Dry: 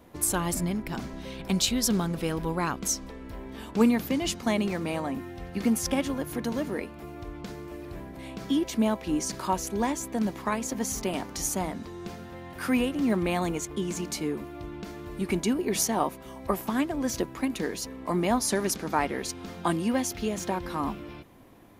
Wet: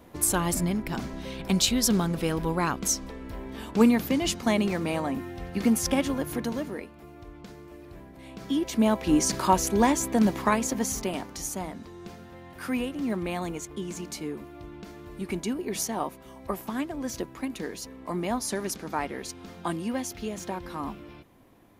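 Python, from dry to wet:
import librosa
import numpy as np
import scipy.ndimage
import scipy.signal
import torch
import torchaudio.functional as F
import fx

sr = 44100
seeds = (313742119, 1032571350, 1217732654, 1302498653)

y = fx.gain(x, sr, db=fx.line((6.33, 2.0), (6.91, -6.0), (8.17, -6.0), (9.13, 6.0), (10.43, 6.0), (11.44, -4.0)))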